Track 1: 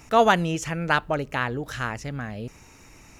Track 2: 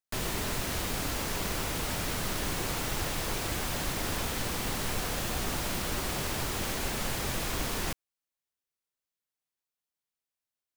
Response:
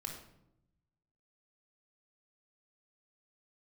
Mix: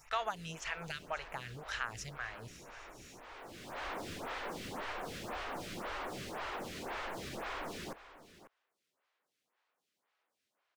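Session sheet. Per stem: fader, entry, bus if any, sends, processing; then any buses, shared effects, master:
+2.5 dB, 0.00 s, no send, echo send -18 dB, amplifier tone stack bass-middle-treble 10-0-10; compression 12:1, threshold -32 dBFS, peak gain reduction 11.5 dB
-7.5 dB, 0.00 s, no send, echo send -15 dB, overdrive pedal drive 36 dB, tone 1.5 kHz, clips at -18.5 dBFS; peak limiter -23.5 dBFS, peak gain reduction 3 dB; auto duck -15 dB, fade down 0.25 s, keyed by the first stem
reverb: none
echo: delay 543 ms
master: treble shelf 7.9 kHz -8 dB; lamp-driven phase shifter 1.9 Hz

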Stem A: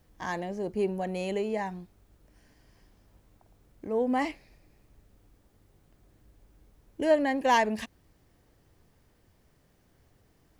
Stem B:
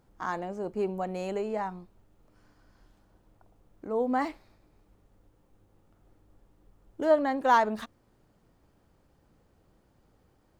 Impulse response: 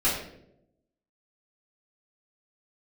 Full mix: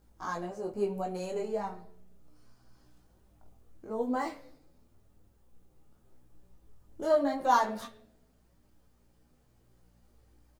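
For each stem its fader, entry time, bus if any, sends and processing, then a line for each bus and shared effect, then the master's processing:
-12.0 dB, 0.00 s, no send, none
+1.0 dB, 0.3 ms, send -20.5 dB, treble shelf 3.9 kHz +11 dB; flange 0.93 Hz, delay 4.8 ms, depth 4.6 ms, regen +45%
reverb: on, RT60 0.80 s, pre-delay 3 ms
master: hum 60 Hz, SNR 31 dB; detune thickener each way 10 cents

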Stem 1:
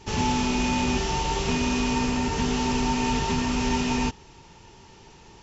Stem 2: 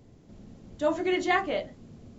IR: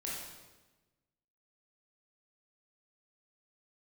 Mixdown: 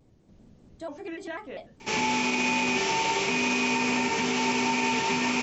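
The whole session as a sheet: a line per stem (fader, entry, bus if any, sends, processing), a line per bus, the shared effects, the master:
+1.5 dB, 1.80 s, no send, high-pass 260 Hz 12 dB/octave; peaking EQ 2.3 kHz +12 dB 0.25 oct
-6.0 dB, 0.00 s, no send, compression 2:1, threshold -32 dBFS, peak gain reduction 7.5 dB; vibrato with a chosen wave square 5.1 Hz, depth 160 cents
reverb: none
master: peak limiter -16.5 dBFS, peak gain reduction 5 dB

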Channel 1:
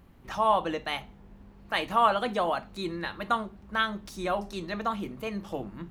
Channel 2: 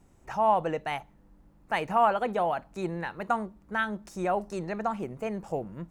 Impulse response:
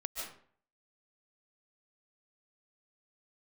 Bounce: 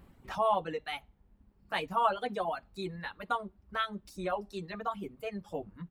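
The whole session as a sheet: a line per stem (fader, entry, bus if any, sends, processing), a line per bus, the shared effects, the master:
-0.5 dB, 0.00 s, no send, auto duck -6 dB, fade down 0.65 s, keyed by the second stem
-8.5 dB, 14 ms, polarity flipped, no send, none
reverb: none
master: peaking EQ 6.3 kHz -6 dB 0.23 oct; reverb removal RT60 1.8 s

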